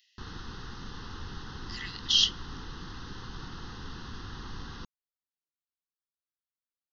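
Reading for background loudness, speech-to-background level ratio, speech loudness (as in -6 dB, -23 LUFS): -43.5 LUFS, 17.5 dB, -26.0 LUFS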